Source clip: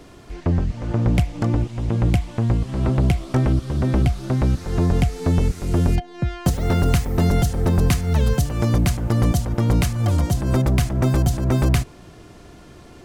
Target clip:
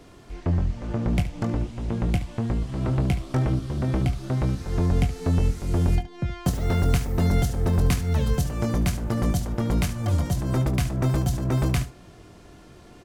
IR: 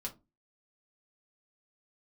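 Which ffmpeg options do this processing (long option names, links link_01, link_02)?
-af "aecho=1:1:22|72:0.376|0.224,volume=-5dB"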